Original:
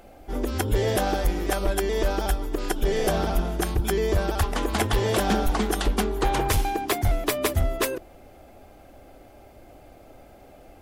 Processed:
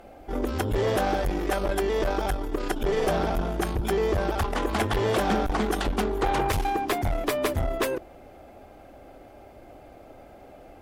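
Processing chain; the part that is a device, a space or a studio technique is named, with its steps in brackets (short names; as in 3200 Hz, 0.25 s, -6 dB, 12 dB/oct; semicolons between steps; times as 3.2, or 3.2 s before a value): tube preamp driven hard (tube stage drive 21 dB, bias 0.4; low shelf 200 Hz -5 dB; high shelf 3400 Hz -9 dB); gain +4.5 dB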